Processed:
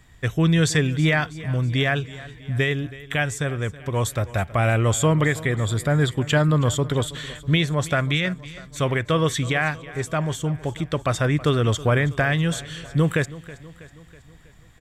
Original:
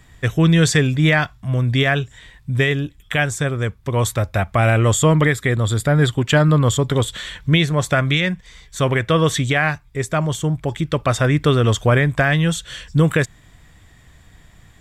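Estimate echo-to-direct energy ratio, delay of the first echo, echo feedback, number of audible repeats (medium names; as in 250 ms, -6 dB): -16.5 dB, 323 ms, 56%, 4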